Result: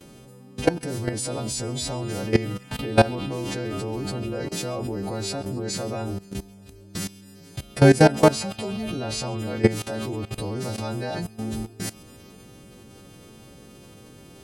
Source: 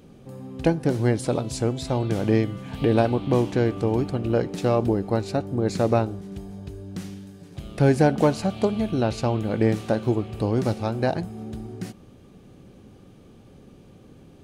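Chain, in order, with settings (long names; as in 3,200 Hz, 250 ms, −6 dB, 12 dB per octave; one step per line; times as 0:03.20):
every partial snapped to a pitch grid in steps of 2 semitones
output level in coarse steps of 18 dB
on a send: delay with a high-pass on its return 135 ms, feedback 71%, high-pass 2,200 Hz, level −21.5 dB
on the sum: level +7 dB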